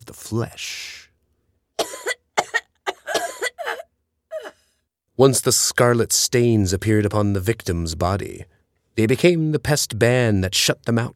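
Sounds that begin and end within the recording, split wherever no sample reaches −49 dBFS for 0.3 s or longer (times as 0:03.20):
0:01.79–0:03.84
0:04.31–0:04.53
0:05.18–0:08.55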